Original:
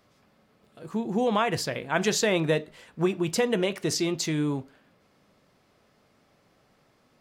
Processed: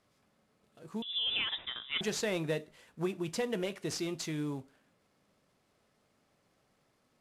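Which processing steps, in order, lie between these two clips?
CVSD coder 64 kbps; 1.02–2.01 s: frequency inversion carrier 3.7 kHz; trim -9 dB

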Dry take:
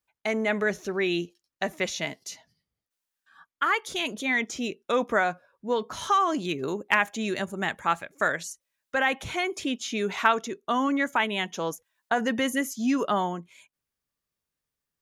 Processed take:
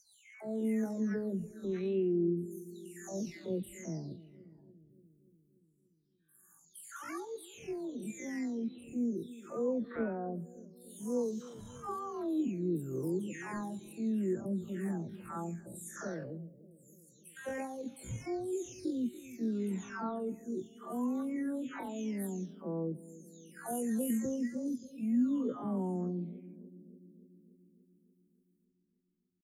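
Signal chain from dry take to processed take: delay that grows with frequency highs early, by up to 403 ms; FFT filter 120 Hz 0 dB, 330 Hz -2 dB, 770 Hz -17 dB, 3.3 kHz -26 dB, 9.3 kHz -4 dB; tempo 0.51×; bucket-brigade echo 289 ms, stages 1024, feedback 67%, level -16.5 dB

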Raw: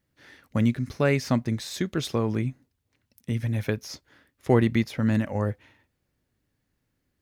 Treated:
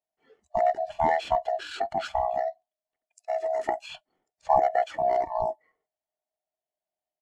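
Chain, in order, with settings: split-band scrambler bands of 1 kHz; spectral noise reduction 16 dB; pitch shift -10 st; trim -1.5 dB

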